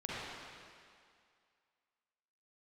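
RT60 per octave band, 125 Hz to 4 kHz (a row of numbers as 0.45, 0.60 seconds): 1.7, 2.0, 2.1, 2.3, 2.2, 2.1 seconds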